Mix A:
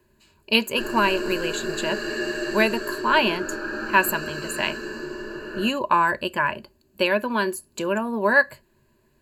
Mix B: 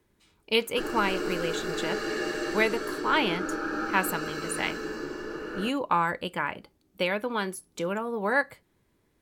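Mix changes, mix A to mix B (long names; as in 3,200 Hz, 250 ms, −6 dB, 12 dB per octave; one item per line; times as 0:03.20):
speech −4.0 dB
master: remove EQ curve with evenly spaced ripples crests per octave 1.4, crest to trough 12 dB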